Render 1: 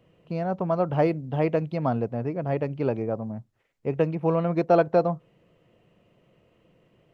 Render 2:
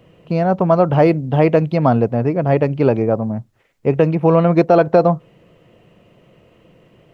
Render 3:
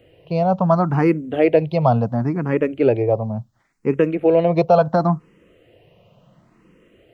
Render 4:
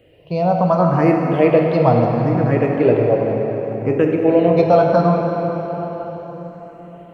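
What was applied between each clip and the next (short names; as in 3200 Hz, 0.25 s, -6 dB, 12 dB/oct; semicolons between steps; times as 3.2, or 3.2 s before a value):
maximiser +12.5 dB; gain -1 dB
endless phaser +0.71 Hz
plate-style reverb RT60 4.8 s, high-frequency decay 0.7×, DRR 0.5 dB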